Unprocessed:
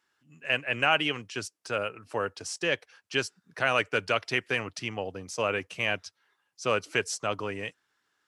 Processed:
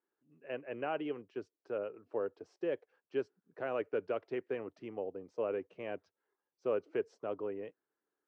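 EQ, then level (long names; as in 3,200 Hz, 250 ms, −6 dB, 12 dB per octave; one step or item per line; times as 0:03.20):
resonant band-pass 400 Hz, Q 1.8
high-frequency loss of the air 92 metres
−1.5 dB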